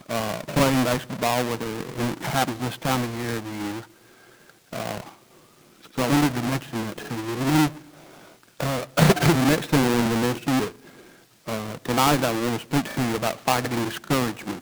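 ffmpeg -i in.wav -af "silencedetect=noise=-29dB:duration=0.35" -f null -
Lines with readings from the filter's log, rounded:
silence_start: 3.78
silence_end: 4.73 | silence_duration: 0.95
silence_start: 5.00
silence_end: 5.98 | silence_duration: 0.97
silence_start: 7.68
silence_end: 8.60 | silence_duration: 0.92
silence_start: 10.68
silence_end: 11.48 | silence_duration: 0.80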